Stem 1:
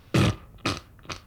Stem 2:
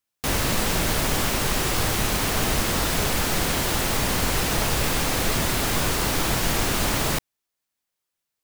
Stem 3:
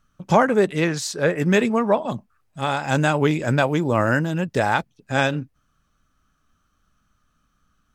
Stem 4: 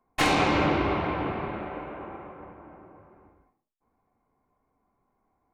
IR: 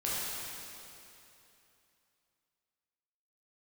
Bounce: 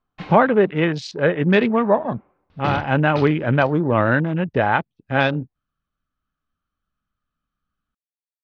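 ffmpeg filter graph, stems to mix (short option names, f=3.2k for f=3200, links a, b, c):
-filter_complex "[0:a]adelay=2500,volume=-5dB[a];[2:a]afwtdn=0.0251,volume=2dB[b];[3:a]aeval=exprs='val(0)*pow(10,-35*(0.5-0.5*cos(2*PI*0.51*n/s))/20)':c=same,volume=-10.5dB[c];[a][b][c]amix=inputs=3:normalize=0,lowpass=f=4.5k:w=0.5412,lowpass=f=4.5k:w=1.3066"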